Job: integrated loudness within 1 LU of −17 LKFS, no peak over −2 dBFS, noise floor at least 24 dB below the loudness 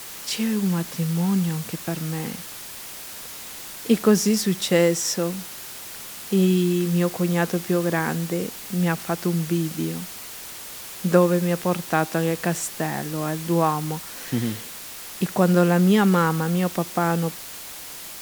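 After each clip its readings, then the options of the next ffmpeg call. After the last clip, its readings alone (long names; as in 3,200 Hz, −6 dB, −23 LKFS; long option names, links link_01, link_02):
background noise floor −38 dBFS; target noise floor −47 dBFS; integrated loudness −23.0 LKFS; sample peak −3.5 dBFS; target loudness −17.0 LKFS
→ -af "afftdn=noise_reduction=9:noise_floor=-38"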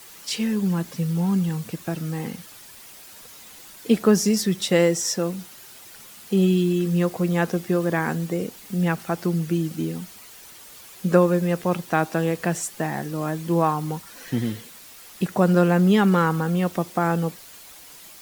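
background noise floor −45 dBFS; target noise floor −47 dBFS
→ -af "afftdn=noise_reduction=6:noise_floor=-45"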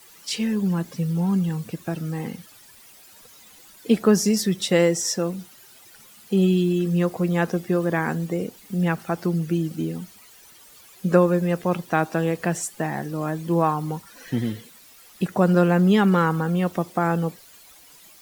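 background noise floor −50 dBFS; integrated loudness −23.0 LKFS; sample peak −3.5 dBFS; target loudness −17.0 LKFS
→ -af "volume=6dB,alimiter=limit=-2dB:level=0:latency=1"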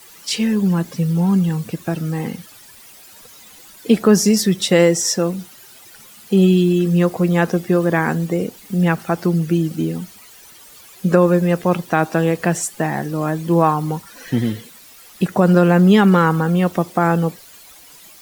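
integrated loudness −17.5 LKFS; sample peak −2.0 dBFS; background noise floor −44 dBFS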